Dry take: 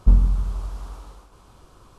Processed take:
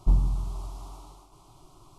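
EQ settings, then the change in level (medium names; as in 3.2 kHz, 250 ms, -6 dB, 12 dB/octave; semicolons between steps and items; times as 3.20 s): static phaser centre 330 Hz, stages 8; 0.0 dB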